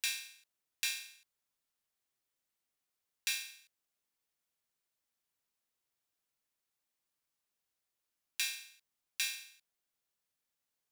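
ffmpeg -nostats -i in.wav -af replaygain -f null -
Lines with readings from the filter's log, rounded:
track_gain = +19.4 dB
track_peak = 0.140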